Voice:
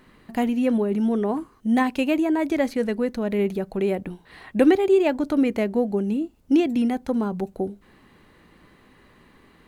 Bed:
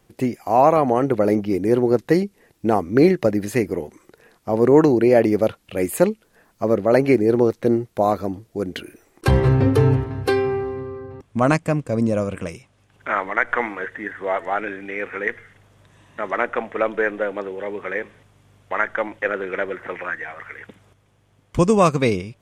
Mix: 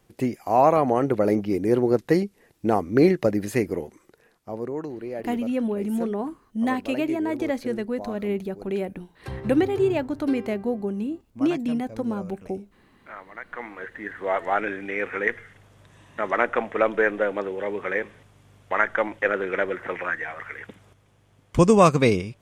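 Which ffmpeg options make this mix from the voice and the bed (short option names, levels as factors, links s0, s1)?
-filter_complex "[0:a]adelay=4900,volume=0.631[s0];[1:a]volume=5.96,afade=t=out:st=3.75:d=0.99:silence=0.16788,afade=t=in:st=13.47:d=1.09:silence=0.11885[s1];[s0][s1]amix=inputs=2:normalize=0"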